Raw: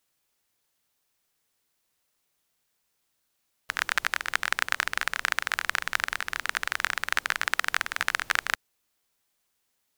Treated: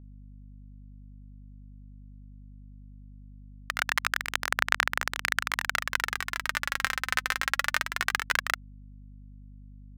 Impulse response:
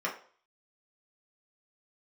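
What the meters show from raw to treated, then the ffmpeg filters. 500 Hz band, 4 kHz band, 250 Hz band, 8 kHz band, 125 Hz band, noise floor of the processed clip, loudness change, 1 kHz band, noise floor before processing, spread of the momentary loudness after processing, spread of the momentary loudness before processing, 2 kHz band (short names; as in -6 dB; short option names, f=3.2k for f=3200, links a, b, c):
0.0 dB, -0.5 dB, +4.0 dB, -0.5 dB, n/a, -48 dBFS, -0.5 dB, 0.0 dB, -76 dBFS, 5 LU, 3 LU, -0.5 dB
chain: -af "aeval=exprs='val(0)*gte(abs(val(0)),0.0501)':c=same,aphaser=in_gain=1:out_gain=1:delay=3.9:decay=0.42:speed=0.21:type=sinusoidal,aeval=exprs='val(0)+0.00562*(sin(2*PI*50*n/s)+sin(2*PI*2*50*n/s)/2+sin(2*PI*3*50*n/s)/3+sin(2*PI*4*50*n/s)/4+sin(2*PI*5*50*n/s)/5)':c=same,volume=-1.5dB"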